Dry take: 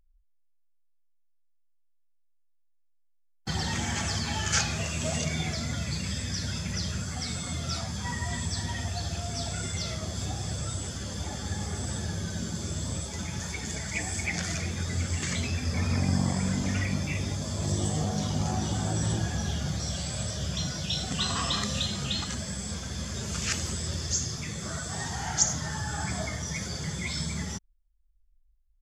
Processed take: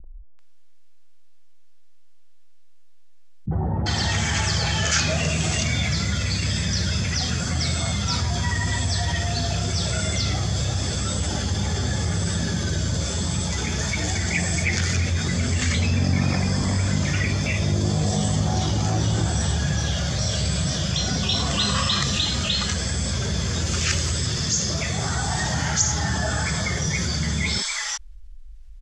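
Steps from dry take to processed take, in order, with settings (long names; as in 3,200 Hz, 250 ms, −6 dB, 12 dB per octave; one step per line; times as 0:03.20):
low-pass filter 7,000 Hz 12 dB per octave
three-band delay without the direct sound lows, mids, highs 40/390 ms, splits 250/880 Hz
envelope flattener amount 50%
level +4 dB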